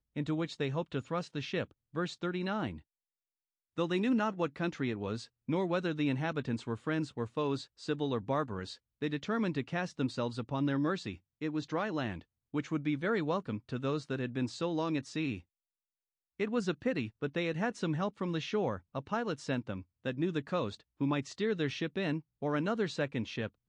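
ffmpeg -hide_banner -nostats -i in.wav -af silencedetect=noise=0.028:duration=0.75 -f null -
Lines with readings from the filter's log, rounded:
silence_start: 2.70
silence_end: 3.78 | silence_duration: 1.08
silence_start: 15.35
silence_end: 16.40 | silence_duration: 1.05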